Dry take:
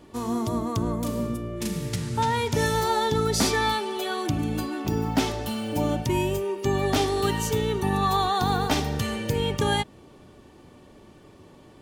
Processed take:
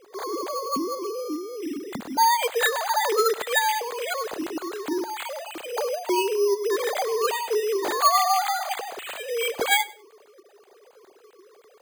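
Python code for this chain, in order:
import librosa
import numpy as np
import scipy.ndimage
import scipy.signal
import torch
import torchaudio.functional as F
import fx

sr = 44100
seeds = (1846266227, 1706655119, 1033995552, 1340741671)

p1 = fx.sine_speech(x, sr)
p2 = fx.wow_flutter(p1, sr, seeds[0], rate_hz=2.1, depth_cents=25.0)
p3 = np.repeat(p2[::8], 8)[:len(p2)]
y = p3 + fx.echo_feedback(p3, sr, ms=99, feedback_pct=22, wet_db=-20, dry=0)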